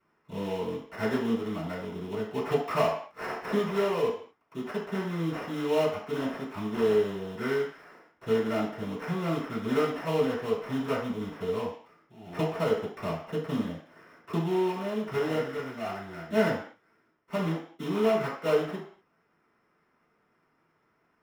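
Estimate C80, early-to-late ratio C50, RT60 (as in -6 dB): 8.0 dB, 4.0 dB, no single decay rate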